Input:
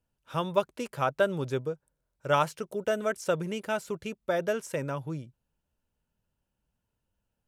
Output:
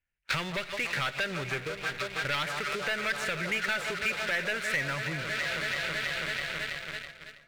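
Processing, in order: resonant high shelf 3 kHz -12.5 dB, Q 3; echo whose repeats swap between lows and highs 163 ms, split 1.2 kHz, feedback 89%, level -14 dB; waveshaping leveller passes 3; expander -44 dBFS; on a send at -20 dB: reverberation RT60 1.1 s, pre-delay 7 ms; on the sum: compression 10:1, threshold -35 dBFS, peak gain reduction 21.5 dB; graphic EQ 125/250/500/1000/2000/4000/8000 Hz -6/-9/-6/-9/+9/+10/+6 dB; power-law waveshaper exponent 0.7; trim +3.5 dB

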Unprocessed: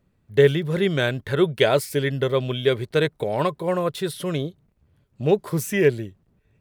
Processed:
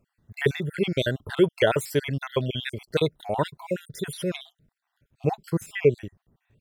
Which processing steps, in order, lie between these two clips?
random holes in the spectrogram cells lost 50%; 5.50–5.98 s: treble shelf 3.2 kHz -10 dB

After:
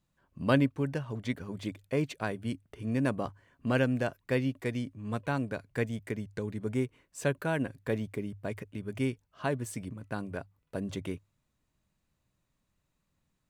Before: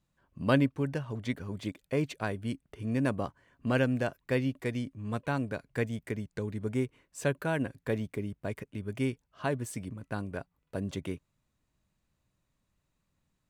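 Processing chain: hum notches 50/100 Hz

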